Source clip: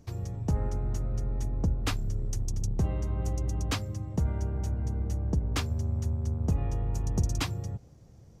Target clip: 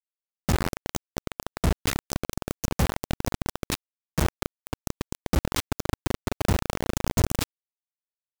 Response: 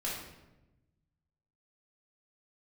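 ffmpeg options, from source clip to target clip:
-filter_complex "[0:a]asplit=2[link_01][link_02];[link_02]adelay=1224,volume=-20dB,highshelf=frequency=4000:gain=-27.6[link_03];[link_01][link_03]amix=inputs=2:normalize=0,acrusher=bits=3:mix=0:aa=0.000001,volume=1dB"

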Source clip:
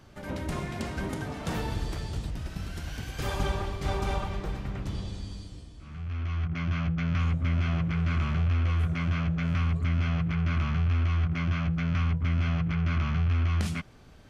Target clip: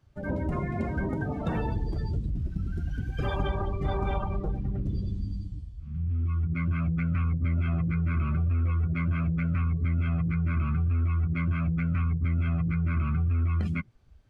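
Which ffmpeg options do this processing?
ffmpeg -i in.wav -filter_complex "[0:a]afftdn=noise_reduction=24:noise_floor=-35,asplit=2[link_01][link_02];[link_02]asoftclip=type=tanh:threshold=-29dB,volume=-12dB[link_03];[link_01][link_03]amix=inputs=2:normalize=0,acompressor=threshold=-33dB:ratio=2.5,volume=6dB" out.wav

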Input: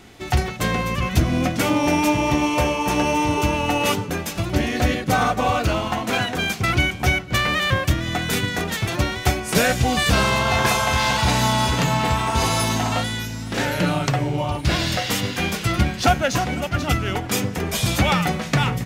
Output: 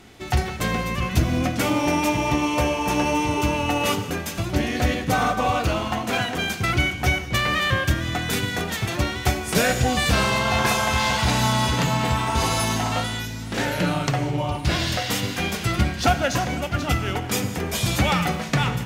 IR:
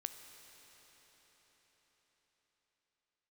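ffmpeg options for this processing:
-filter_complex "[1:a]atrim=start_sample=2205,afade=type=out:start_time=0.22:duration=0.01,atrim=end_sample=10143,asetrate=34839,aresample=44100[link_01];[0:a][link_01]afir=irnorm=-1:irlink=0"

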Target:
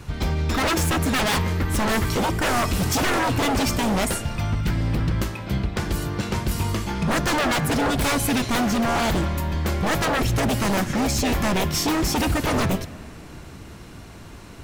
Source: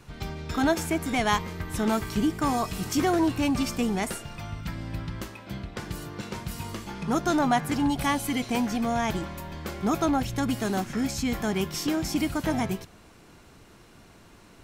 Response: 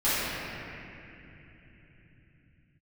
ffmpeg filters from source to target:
-filter_complex "[0:a]equalizer=frequency=70:width_type=o:width=1.5:gain=8.5,aeval=exprs='0.0562*(abs(mod(val(0)/0.0562+3,4)-2)-1)':channel_layout=same,asplit=2[link_01][link_02];[1:a]atrim=start_sample=2205[link_03];[link_02][link_03]afir=irnorm=-1:irlink=0,volume=-32.5dB[link_04];[link_01][link_04]amix=inputs=2:normalize=0,volume=8.5dB"

